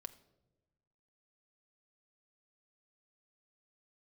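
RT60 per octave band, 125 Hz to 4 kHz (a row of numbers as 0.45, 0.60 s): 1.7, 1.4, 1.3, 0.80, 0.65, 0.60 s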